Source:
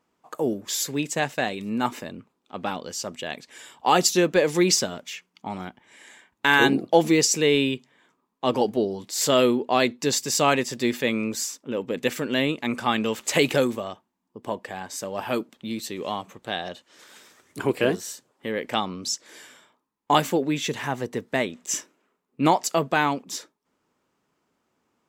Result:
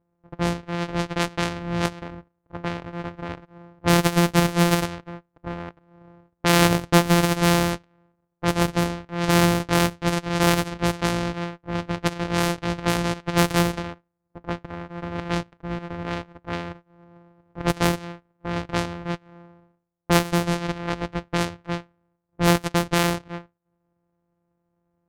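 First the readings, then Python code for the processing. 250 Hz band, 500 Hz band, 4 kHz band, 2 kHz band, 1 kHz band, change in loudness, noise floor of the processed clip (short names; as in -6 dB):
+2.0 dB, -2.0 dB, -1.0 dB, -0.5 dB, 0.0 dB, +0.5 dB, -75 dBFS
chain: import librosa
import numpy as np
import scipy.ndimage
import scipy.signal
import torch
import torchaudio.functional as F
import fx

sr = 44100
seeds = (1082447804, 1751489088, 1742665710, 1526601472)

y = np.r_[np.sort(x[:len(x) // 256 * 256].reshape(-1, 256), axis=1).ravel(), x[len(x) // 256 * 256:]]
y = fx.env_lowpass(y, sr, base_hz=970.0, full_db=-17.5)
y = F.gain(torch.from_numpy(y), 1.0).numpy()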